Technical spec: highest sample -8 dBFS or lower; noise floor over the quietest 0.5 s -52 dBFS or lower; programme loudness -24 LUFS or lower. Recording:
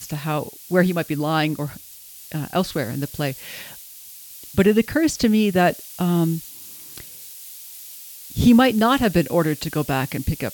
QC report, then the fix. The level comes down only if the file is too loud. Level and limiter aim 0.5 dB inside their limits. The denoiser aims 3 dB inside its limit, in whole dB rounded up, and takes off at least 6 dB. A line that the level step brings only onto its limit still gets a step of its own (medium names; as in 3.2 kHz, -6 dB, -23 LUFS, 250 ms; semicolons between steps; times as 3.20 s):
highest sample -5.0 dBFS: fail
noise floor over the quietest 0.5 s -42 dBFS: fail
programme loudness -20.5 LUFS: fail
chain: noise reduction 9 dB, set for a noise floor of -42 dBFS; trim -4 dB